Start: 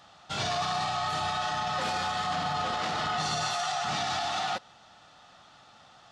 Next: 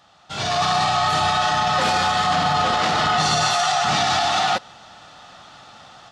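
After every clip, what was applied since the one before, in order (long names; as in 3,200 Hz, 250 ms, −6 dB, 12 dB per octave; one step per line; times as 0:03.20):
automatic gain control gain up to 11 dB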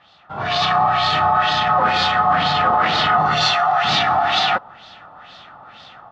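auto-filter low-pass sine 2.1 Hz 990–4,200 Hz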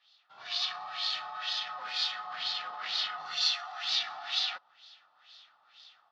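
resonant band-pass 4,800 Hz, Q 1.9
level −6 dB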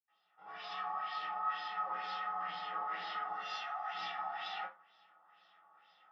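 convolution reverb, pre-delay 77 ms
level +11.5 dB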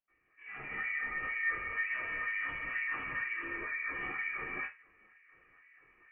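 voice inversion scrambler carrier 3,100 Hz
level +3 dB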